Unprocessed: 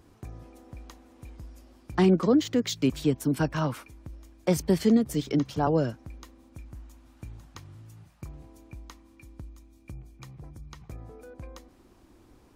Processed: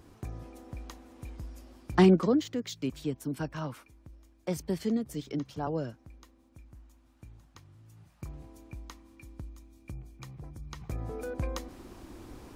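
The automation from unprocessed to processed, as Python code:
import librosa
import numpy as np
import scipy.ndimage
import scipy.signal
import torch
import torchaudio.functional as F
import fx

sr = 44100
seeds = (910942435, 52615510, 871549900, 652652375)

y = fx.gain(x, sr, db=fx.line((2.0, 2.0), (2.57, -8.5), (7.77, -8.5), (8.29, 0.0), (10.57, 0.0), (11.2, 9.5)))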